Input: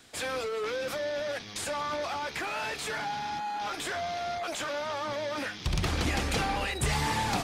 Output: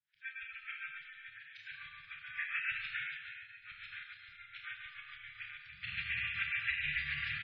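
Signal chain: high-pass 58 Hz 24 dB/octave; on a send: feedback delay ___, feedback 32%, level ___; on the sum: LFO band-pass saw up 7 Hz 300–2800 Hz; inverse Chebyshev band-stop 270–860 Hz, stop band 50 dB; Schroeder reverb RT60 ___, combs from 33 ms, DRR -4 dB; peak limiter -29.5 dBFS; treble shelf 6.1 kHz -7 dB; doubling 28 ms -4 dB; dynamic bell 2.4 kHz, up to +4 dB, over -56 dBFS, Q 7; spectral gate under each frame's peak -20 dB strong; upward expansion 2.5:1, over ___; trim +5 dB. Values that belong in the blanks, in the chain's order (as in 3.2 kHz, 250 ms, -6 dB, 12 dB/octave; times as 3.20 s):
864 ms, -15.5 dB, 2.9 s, -51 dBFS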